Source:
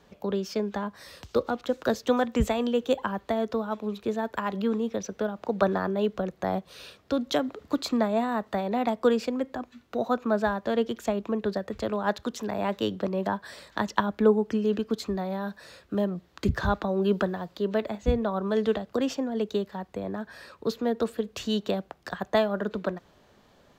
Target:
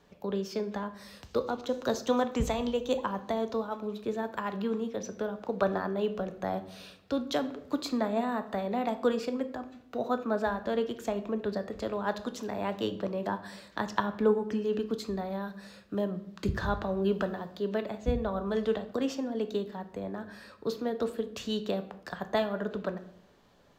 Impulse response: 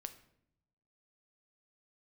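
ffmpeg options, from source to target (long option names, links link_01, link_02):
-filter_complex "[0:a]asettb=1/sr,asplit=3[link_01][link_02][link_03];[link_01]atrim=end=1.384[link_04];[link_02]atrim=start=1.38:end=3.67,asetpts=PTS-STARTPTS,afade=type=in:duration=0.004:curve=qsin,afade=type=out:start_time=2.286:duration=0.004:curve=qsin,equalizer=frequency=1000:width_type=o:width=0.33:gain=4,equalizer=frequency=1600:width_type=o:width=0.33:gain=-3,equalizer=frequency=4000:width_type=o:width=0.33:gain=4,equalizer=frequency=6300:width_type=o:width=0.33:gain=7[link_05];[link_03]atrim=start=3.666[link_06];[link_04][link_05]acrossfade=duration=0.004:curve1=hsin:curve2=qsin[link_07];[link_07][link_06]acrossfade=duration=0.004:curve1=qsin:curve2=hsin[link_08];[1:a]atrim=start_sample=2205[link_09];[link_08][link_09]afir=irnorm=-1:irlink=0"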